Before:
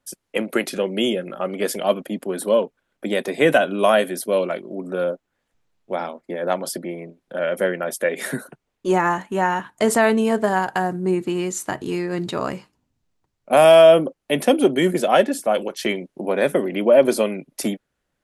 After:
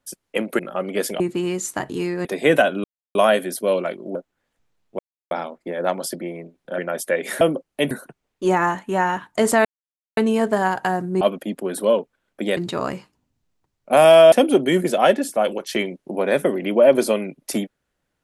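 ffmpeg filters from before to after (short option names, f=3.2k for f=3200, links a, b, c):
-filter_complex "[0:a]asplit=14[a][b][c][d][e][f][g][h][i][j][k][l][m][n];[a]atrim=end=0.592[o];[b]atrim=start=1.238:end=1.852[p];[c]atrim=start=11.118:end=12.172[q];[d]atrim=start=3.208:end=3.8,asetpts=PTS-STARTPTS,afade=t=out:st=0.588:d=0.004:c=hsin,apad=pad_dur=0.31[r];[e]atrim=start=3.8:end=4.802,asetpts=PTS-STARTPTS,afade=t=in:d=0.004:c=hsin[s];[f]atrim=start=5.098:end=5.94,asetpts=PTS-STARTPTS,afade=t=out:st=0.838:d=0.004:c=hsin,apad=pad_dur=0.32[t];[g]atrim=start=5.94:end=7.412,asetpts=PTS-STARTPTS,afade=t=in:d=0.004:c=hsin[u];[h]atrim=start=7.708:end=8.342[v];[i]atrim=start=13.918:end=14.422[w];[j]atrim=start=8.338:end=10.08,asetpts=PTS-STARTPTS,afade=t=out:st=1.738:d=0.004:c=hsin,apad=pad_dur=0.52[x];[k]atrim=start=10.08:end=11.122,asetpts=PTS-STARTPTS,afade=t=in:d=0.004:c=hsin[y];[l]atrim=start=1.848:end=3.212[z];[m]atrim=start=12.168:end=13.922[aa];[n]atrim=start=14.418[ab];[o][p]acrossfade=d=0.004:c1=hsin:c2=hsin[ac];[ac][q]acrossfade=d=0.004:c1=hsin:c2=hsin[ad];[r][s]concat=n=2:v=0:a=1[ae];[ad][ae]acrossfade=d=0.004:c1=hsin:c2=hsin[af];[t][u]concat=n=2:v=0:a=1[ag];[af][ag]acrossfade=d=0.004:c1=hsin:c2=hsin[ah];[ah][v]acrossfade=d=0.004:c1=hsin:c2=hsin[ai];[ai][w]acrossfade=d=0.004:c1=hsin:c2=hsin[aj];[x][y]concat=n=2:v=0:a=1[ak];[aj][ak]acrossfade=d=0.004:c1=hsin:c2=hsin[al];[al][z]acrossfade=d=0.004:c1=hsin:c2=hsin[am];[am][aa]acrossfade=d=0.004:c1=hsin:c2=hsin[an];[an][ab]acrossfade=d=0.004:c1=hsin:c2=hsin"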